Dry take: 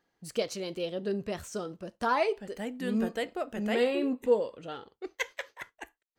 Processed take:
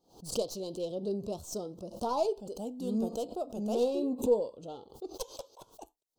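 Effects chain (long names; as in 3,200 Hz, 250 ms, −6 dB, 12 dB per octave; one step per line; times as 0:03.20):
stylus tracing distortion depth 0.1 ms
Chebyshev band-stop filter 810–4,300 Hz, order 2
background raised ahead of every attack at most 140 dB per second
level −1.5 dB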